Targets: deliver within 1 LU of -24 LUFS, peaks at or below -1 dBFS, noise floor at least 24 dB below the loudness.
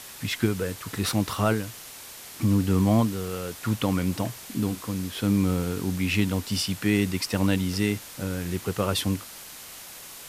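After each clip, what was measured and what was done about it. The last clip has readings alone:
noise floor -43 dBFS; noise floor target -51 dBFS; loudness -26.5 LUFS; peak -9.0 dBFS; loudness target -24.0 LUFS
-> denoiser 8 dB, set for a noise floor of -43 dBFS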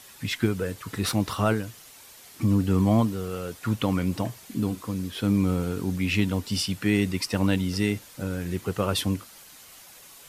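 noise floor -49 dBFS; noise floor target -51 dBFS
-> denoiser 6 dB, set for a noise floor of -49 dBFS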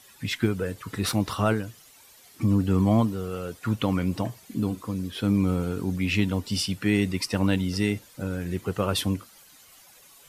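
noise floor -53 dBFS; loudness -26.5 LUFS; peak -9.5 dBFS; loudness target -24.0 LUFS
-> gain +2.5 dB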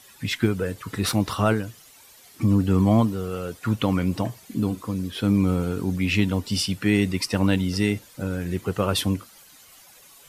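loudness -24.0 LUFS; peak -7.0 dBFS; noise floor -51 dBFS

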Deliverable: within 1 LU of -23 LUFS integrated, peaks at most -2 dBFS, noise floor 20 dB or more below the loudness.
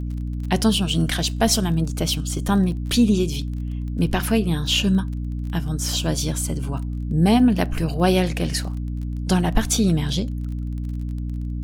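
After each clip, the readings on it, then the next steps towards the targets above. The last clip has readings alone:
ticks 24/s; hum 60 Hz; harmonics up to 300 Hz; hum level -24 dBFS; loudness -22.0 LUFS; peak -3.0 dBFS; loudness target -23.0 LUFS
-> de-click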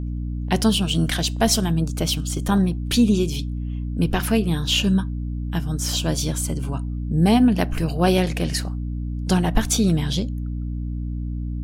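ticks 0.34/s; hum 60 Hz; harmonics up to 300 Hz; hum level -24 dBFS
-> de-hum 60 Hz, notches 5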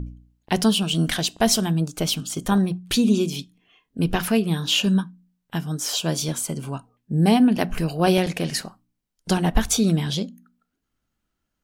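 hum none; loudness -22.0 LUFS; peak -3.5 dBFS; loudness target -23.0 LUFS
-> gain -1 dB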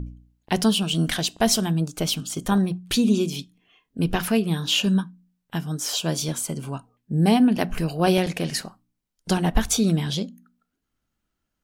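loudness -23.0 LUFS; peak -4.5 dBFS; noise floor -79 dBFS

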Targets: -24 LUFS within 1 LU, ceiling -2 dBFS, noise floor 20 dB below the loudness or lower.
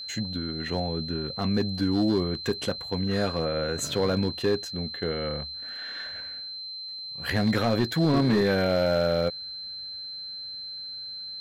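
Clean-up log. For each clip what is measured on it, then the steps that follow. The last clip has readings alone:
clipped 0.9%; flat tops at -17.0 dBFS; steady tone 4100 Hz; tone level -35 dBFS; loudness -28.0 LUFS; peak -17.0 dBFS; loudness target -24.0 LUFS
-> clip repair -17 dBFS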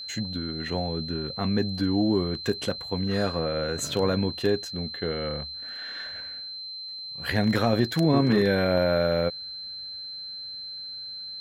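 clipped 0.0%; steady tone 4100 Hz; tone level -35 dBFS
-> notch 4100 Hz, Q 30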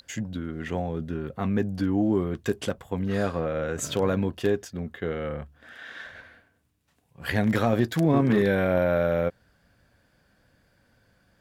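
steady tone none; loudness -26.5 LUFS; peak -8.5 dBFS; loudness target -24.0 LUFS
-> gain +2.5 dB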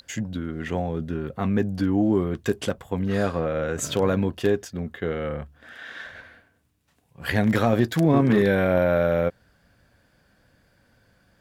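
loudness -24.0 LUFS; peak -6.0 dBFS; noise floor -64 dBFS

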